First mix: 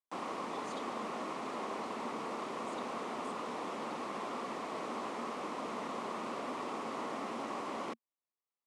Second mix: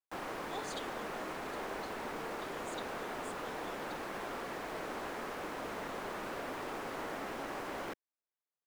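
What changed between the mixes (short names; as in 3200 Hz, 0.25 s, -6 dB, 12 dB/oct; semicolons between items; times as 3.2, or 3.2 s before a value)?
speech +8.0 dB; background: remove speaker cabinet 160–9400 Hz, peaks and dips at 230 Hz +8 dB, 1100 Hz +7 dB, 1600 Hz -9 dB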